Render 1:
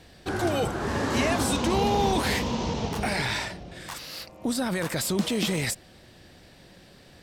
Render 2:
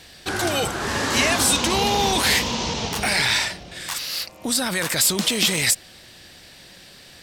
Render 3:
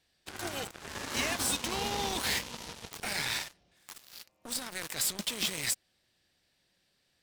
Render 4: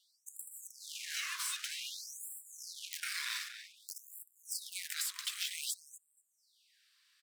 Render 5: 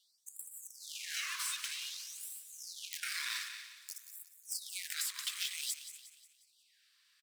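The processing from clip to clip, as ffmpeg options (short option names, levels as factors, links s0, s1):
-af "tiltshelf=f=1300:g=-6.5,volume=2"
-af "asoftclip=type=tanh:threshold=0.316,aeval=exprs='0.316*(cos(1*acos(clip(val(0)/0.316,-1,1)))-cos(1*PI/2))+0.0631*(cos(3*acos(clip(val(0)/0.316,-1,1)))-cos(3*PI/2))+0.0224*(cos(7*acos(clip(val(0)/0.316,-1,1)))-cos(7*PI/2))':c=same,volume=0.422"
-filter_complex "[0:a]acompressor=threshold=0.0126:ratio=6,asplit=2[s0][s1];[s1]adelay=239,lowpass=f=4800:p=1,volume=0.355,asplit=2[s2][s3];[s3]adelay=239,lowpass=f=4800:p=1,volume=0.27,asplit=2[s4][s5];[s5]adelay=239,lowpass=f=4800:p=1,volume=0.27[s6];[s0][s2][s4][s6]amix=inputs=4:normalize=0,afftfilt=real='re*gte(b*sr/1024,950*pow(7400/950,0.5+0.5*sin(2*PI*0.53*pts/sr)))':imag='im*gte(b*sr/1024,950*pow(7400/950,0.5+0.5*sin(2*PI*0.53*pts/sr)))':win_size=1024:overlap=0.75,volume=1.58"
-filter_complex "[0:a]acrusher=bits=6:mode=log:mix=0:aa=0.000001,asplit=2[s0][s1];[s1]aecho=0:1:179|358|537|716|895:0.251|0.118|0.0555|0.0261|0.0123[s2];[s0][s2]amix=inputs=2:normalize=0"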